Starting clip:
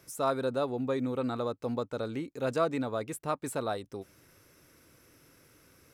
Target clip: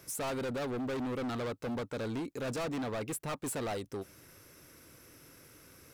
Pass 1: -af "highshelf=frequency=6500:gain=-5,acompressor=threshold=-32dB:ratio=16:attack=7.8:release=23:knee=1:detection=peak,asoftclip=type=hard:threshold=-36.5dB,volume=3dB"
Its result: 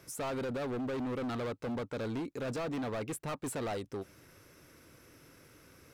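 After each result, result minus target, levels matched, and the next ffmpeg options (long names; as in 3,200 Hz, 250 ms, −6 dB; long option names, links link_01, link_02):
downward compressor: peak gain reduction +8.5 dB; 8,000 Hz band −3.5 dB
-af "highshelf=frequency=6500:gain=-5,asoftclip=type=hard:threshold=-36.5dB,volume=3dB"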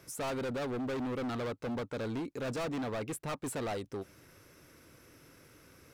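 8,000 Hz band −3.5 dB
-af "highshelf=frequency=6500:gain=3.5,asoftclip=type=hard:threshold=-36.5dB,volume=3dB"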